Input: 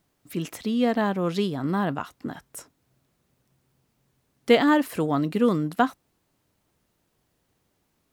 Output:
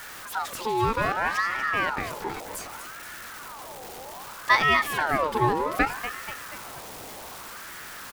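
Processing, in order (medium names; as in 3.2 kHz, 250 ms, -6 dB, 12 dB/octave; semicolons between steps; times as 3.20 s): jump at every zero crossing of -32 dBFS; feedback delay 241 ms, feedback 57%, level -11 dB; ring modulator with a swept carrier 1.1 kHz, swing 45%, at 0.64 Hz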